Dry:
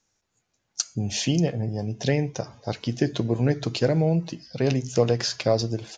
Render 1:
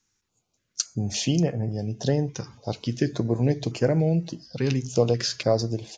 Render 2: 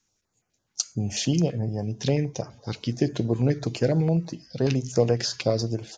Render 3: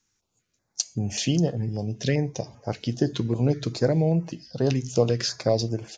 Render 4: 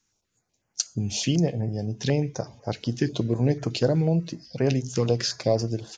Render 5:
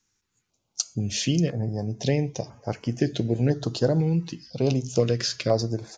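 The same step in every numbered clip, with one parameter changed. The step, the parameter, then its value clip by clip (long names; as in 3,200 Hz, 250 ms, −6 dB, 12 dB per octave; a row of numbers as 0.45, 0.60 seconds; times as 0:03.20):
notch on a step sequencer, speed: 3.5, 12, 5.1, 8.1, 2 Hertz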